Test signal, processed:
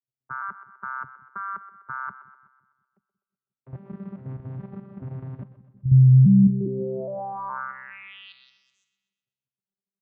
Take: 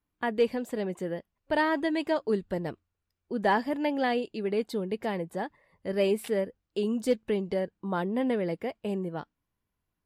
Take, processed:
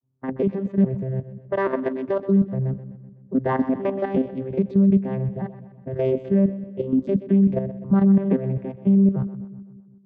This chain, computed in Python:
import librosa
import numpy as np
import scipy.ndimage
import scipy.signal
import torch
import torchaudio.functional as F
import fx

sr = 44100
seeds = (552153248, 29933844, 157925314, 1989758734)

y = fx.vocoder_arp(x, sr, chord='bare fifth', root=48, every_ms=416)
y = fx.env_lowpass(y, sr, base_hz=980.0, full_db=-28.0)
y = fx.level_steps(y, sr, step_db=10)
y = fx.bass_treble(y, sr, bass_db=11, treble_db=-15)
y = fx.echo_split(y, sr, split_hz=350.0, low_ms=178, high_ms=126, feedback_pct=52, wet_db=-14)
y = y * librosa.db_to_amplitude(8.0)